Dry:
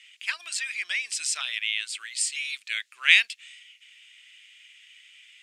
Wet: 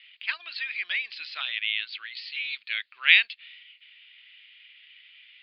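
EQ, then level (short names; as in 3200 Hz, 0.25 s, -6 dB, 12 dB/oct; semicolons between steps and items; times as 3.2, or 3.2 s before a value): steep low-pass 4600 Hz 96 dB/oct; 0.0 dB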